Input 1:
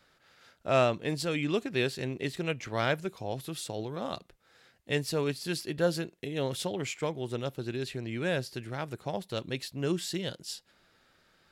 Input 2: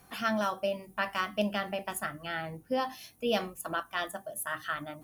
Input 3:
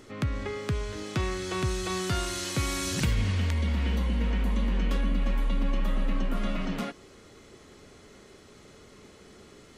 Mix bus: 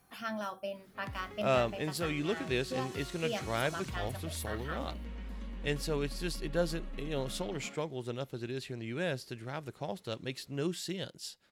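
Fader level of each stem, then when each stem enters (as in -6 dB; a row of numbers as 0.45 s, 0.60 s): -4.0 dB, -8.0 dB, -16.0 dB; 0.75 s, 0.00 s, 0.85 s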